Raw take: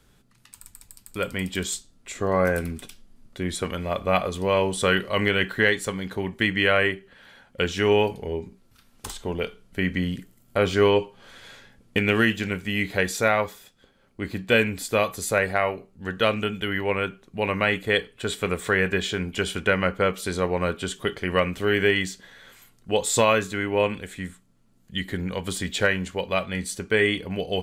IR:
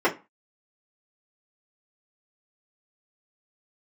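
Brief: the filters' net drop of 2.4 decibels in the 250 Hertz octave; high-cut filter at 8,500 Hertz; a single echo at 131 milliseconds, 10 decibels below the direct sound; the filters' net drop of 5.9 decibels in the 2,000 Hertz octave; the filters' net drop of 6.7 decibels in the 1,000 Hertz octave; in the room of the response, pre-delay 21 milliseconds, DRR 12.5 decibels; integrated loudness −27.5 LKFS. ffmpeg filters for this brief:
-filter_complex "[0:a]lowpass=8500,equalizer=frequency=250:width_type=o:gain=-3,equalizer=frequency=1000:width_type=o:gain=-7.5,equalizer=frequency=2000:width_type=o:gain=-5,aecho=1:1:131:0.316,asplit=2[link_01][link_02];[1:a]atrim=start_sample=2205,adelay=21[link_03];[link_02][link_03]afir=irnorm=-1:irlink=0,volume=-29.5dB[link_04];[link_01][link_04]amix=inputs=2:normalize=0"

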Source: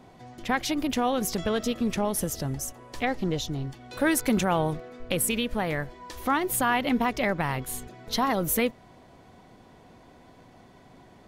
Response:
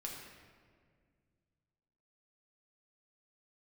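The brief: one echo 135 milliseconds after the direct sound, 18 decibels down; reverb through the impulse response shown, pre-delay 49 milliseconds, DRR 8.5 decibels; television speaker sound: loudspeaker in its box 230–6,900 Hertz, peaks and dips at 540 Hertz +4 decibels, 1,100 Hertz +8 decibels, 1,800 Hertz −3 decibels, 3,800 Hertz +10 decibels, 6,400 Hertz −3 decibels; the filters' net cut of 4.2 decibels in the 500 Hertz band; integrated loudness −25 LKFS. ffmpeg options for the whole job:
-filter_complex "[0:a]equalizer=frequency=500:width_type=o:gain=-8,aecho=1:1:135:0.126,asplit=2[link_01][link_02];[1:a]atrim=start_sample=2205,adelay=49[link_03];[link_02][link_03]afir=irnorm=-1:irlink=0,volume=-7dB[link_04];[link_01][link_04]amix=inputs=2:normalize=0,highpass=frequency=230:width=0.5412,highpass=frequency=230:width=1.3066,equalizer=frequency=540:width_type=q:width=4:gain=4,equalizer=frequency=1100:width_type=q:width=4:gain=8,equalizer=frequency=1800:width_type=q:width=4:gain=-3,equalizer=frequency=3800:width_type=q:width=4:gain=10,equalizer=frequency=6400:width_type=q:width=4:gain=-3,lowpass=frequency=6900:width=0.5412,lowpass=frequency=6900:width=1.3066,volume=3dB"

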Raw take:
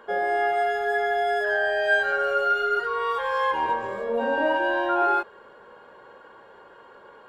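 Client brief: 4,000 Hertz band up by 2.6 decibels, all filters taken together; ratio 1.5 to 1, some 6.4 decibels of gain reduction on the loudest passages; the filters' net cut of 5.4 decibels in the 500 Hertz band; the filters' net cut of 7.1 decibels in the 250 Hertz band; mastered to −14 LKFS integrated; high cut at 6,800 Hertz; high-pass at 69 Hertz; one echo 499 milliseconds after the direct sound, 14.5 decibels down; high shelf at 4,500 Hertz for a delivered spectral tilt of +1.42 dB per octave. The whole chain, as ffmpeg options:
ffmpeg -i in.wav -af "highpass=69,lowpass=6800,equalizer=frequency=250:width_type=o:gain=-7.5,equalizer=frequency=500:width_type=o:gain=-5.5,equalizer=frequency=4000:width_type=o:gain=8.5,highshelf=frequency=4500:gain=-8.5,acompressor=threshold=-37dB:ratio=1.5,aecho=1:1:499:0.188,volume=16.5dB" out.wav

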